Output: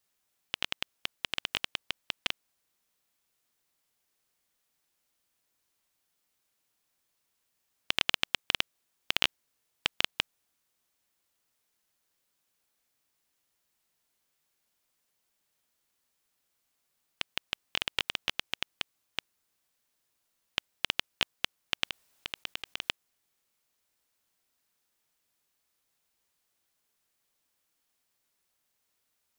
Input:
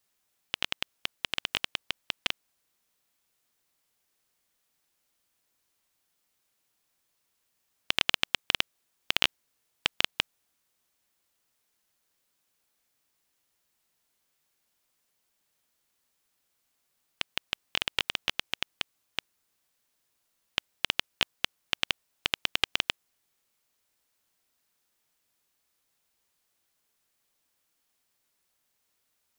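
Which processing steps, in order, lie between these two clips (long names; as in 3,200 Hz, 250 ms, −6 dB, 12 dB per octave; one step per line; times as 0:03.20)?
0:21.84–0:22.89: compressor whose output falls as the input rises −35 dBFS, ratio −1
level −2 dB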